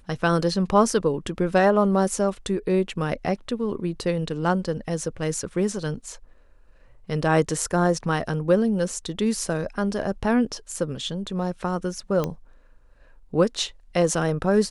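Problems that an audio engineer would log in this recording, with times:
7.72–7.73 s: dropout 5.9 ms
12.24 s: pop -13 dBFS

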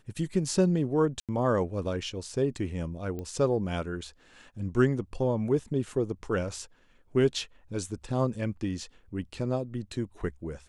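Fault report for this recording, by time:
1.20–1.29 s: dropout 87 ms
3.19 s: pop -25 dBFS

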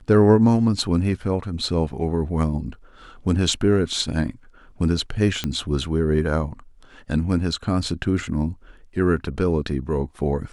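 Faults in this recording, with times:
5.44 s: pop -10 dBFS

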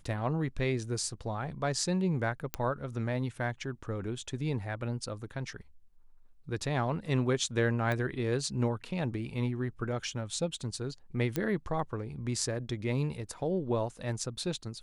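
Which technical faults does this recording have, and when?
2.54 s: pop -15 dBFS
7.92 s: pop -20 dBFS
11.36 s: pop -16 dBFS

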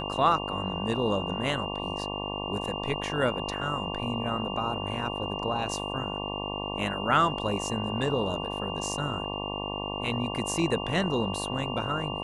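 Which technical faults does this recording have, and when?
buzz 50 Hz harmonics 23 -35 dBFS
whine 2.8 kHz -36 dBFS

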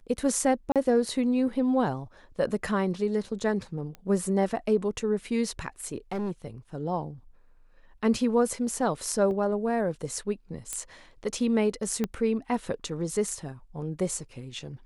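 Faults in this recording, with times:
0.72–0.76 s: dropout 37 ms
3.95 s: pop -27 dBFS
6.12–6.45 s: clipped -27 dBFS
9.31 s: dropout 2 ms
10.73 s: pop -17 dBFS
12.04 s: pop -15 dBFS

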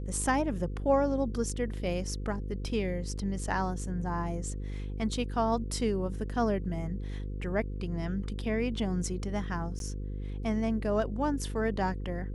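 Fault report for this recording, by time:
buzz 50 Hz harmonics 10 -36 dBFS
9.79–9.80 s: dropout 12 ms

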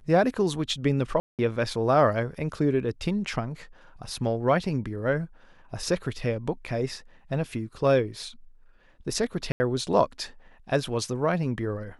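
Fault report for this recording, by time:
1.20–1.39 s: dropout 188 ms
9.52–9.60 s: dropout 80 ms

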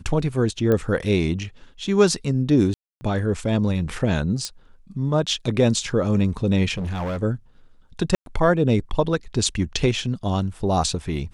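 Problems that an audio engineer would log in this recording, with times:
0.72 s: pop -11 dBFS
2.74–3.01 s: dropout 270 ms
4.45 s: pop -13 dBFS
6.77–7.23 s: clipped -23.5 dBFS
8.15–8.26 s: dropout 112 ms

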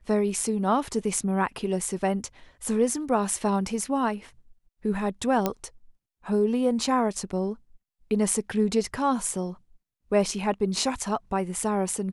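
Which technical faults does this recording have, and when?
5.46 s: pop -10 dBFS

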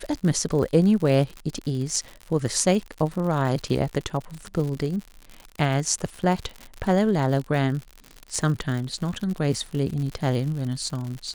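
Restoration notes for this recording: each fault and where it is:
crackle 100 per s -30 dBFS

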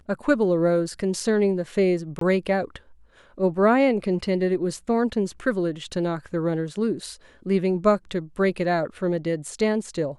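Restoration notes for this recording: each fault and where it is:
2.19–2.21 s: dropout 23 ms

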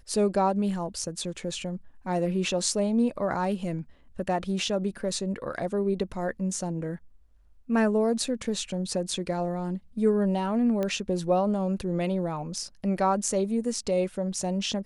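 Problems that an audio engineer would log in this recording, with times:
10.83 s: pop -17 dBFS

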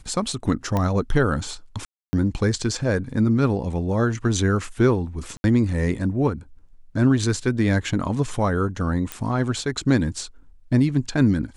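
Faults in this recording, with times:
0.77 s: pop -11 dBFS
1.85–2.13 s: dropout 280 ms
5.37–5.44 s: dropout 71 ms
9.12 s: pop -12 dBFS

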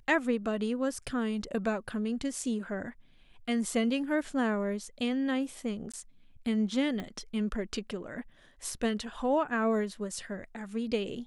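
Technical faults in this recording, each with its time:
5.92–5.94 s: dropout 16 ms
7.00 s: pop -24 dBFS

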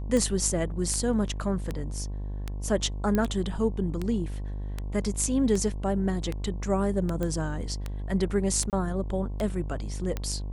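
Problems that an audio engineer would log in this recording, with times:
buzz 50 Hz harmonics 22 -33 dBFS
tick 78 rpm -17 dBFS
3.15 s: pop -14 dBFS
7.23 s: pop -18 dBFS
8.70–8.73 s: dropout 28 ms

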